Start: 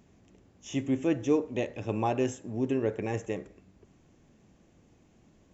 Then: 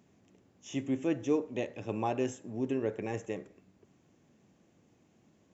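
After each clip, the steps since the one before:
high-pass filter 110 Hz 12 dB per octave
level −3.5 dB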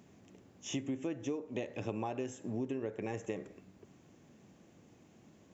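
downward compressor 20 to 1, threshold −38 dBFS, peak gain reduction 16 dB
level +5 dB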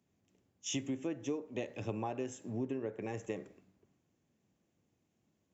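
multiband upward and downward expander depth 70%
level −1 dB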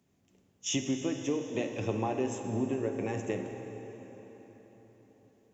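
dense smooth reverb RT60 4.7 s, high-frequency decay 0.75×, DRR 5 dB
level +5.5 dB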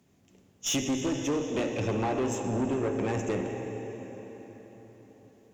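tube saturation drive 31 dB, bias 0.3
level +7.5 dB

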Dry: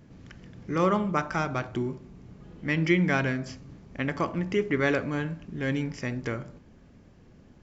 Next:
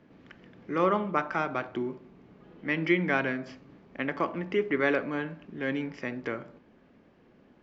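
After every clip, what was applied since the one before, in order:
three-way crossover with the lows and the highs turned down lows −16 dB, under 210 Hz, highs −21 dB, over 4,000 Hz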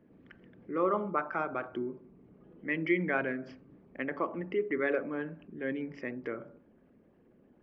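spectral envelope exaggerated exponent 1.5
hum removal 141.3 Hz, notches 11
level −3.5 dB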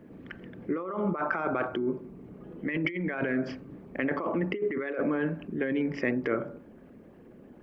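compressor whose output falls as the input rises −37 dBFS, ratio −1
level +7.5 dB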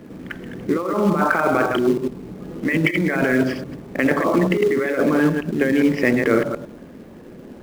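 delay that plays each chunk backwards 104 ms, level −4.5 dB
in parallel at −9 dB: log-companded quantiser 4 bits
on the sum: level +7.5 dB

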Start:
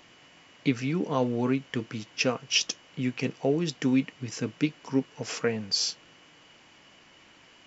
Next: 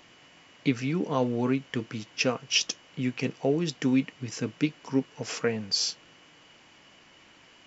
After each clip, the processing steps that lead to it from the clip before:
no processing that can be heard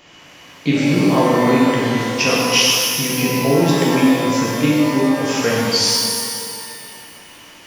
reverb with rising layers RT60 2.2 s, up +12 semitones, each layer −8 dB, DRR −6.5 dB
level +5.5 dB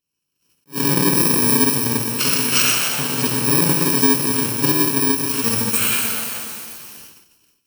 samples in bit-reversed order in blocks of 64 samples
noise gate −38 dBFS, range −33 dB
level that may rise only so fast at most 350 dB per second
level −2 dB

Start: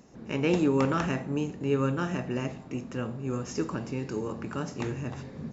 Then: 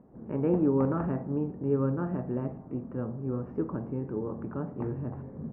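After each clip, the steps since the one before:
Bessel low-pass filter 850 Hz, order 4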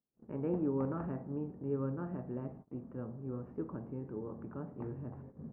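noise gate −42 dBFS, range −31 dB
level −8.5 dB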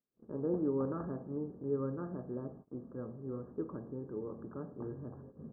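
Chebyshev low-pass with heavy ripple 1,700 Hz, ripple 6 dB
level +2.5 dB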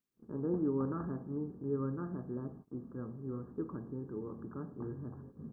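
parametric band 570 Hz −9.5 dB 0.8 octaves
level +2.5 dB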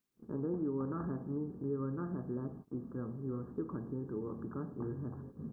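downward compressor 3 to 1, threshold −37 dBFS, peak gain reduction 7 dB
level +3 dB

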